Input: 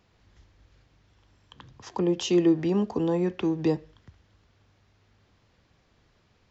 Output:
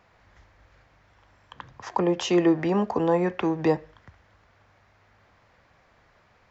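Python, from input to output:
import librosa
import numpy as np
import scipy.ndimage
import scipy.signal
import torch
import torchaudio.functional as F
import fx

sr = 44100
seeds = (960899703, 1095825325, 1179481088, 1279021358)

y = fx.band_shelf(x, sr, hz=1100.0, db=9.5, octaves=2.4)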